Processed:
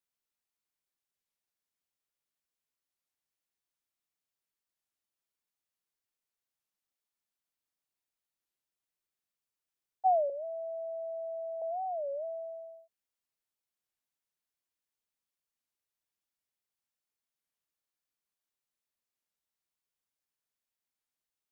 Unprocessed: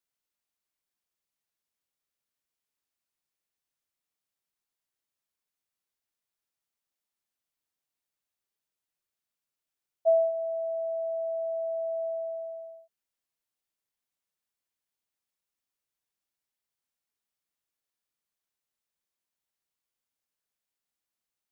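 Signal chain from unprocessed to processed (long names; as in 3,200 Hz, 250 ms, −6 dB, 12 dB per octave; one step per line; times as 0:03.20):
0:10.31–0:11.62: high-pass filter 680 Hz 12 dB per octave
wow of a warped record 33 1/3 rpm, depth 250 cents
level −3.5 dB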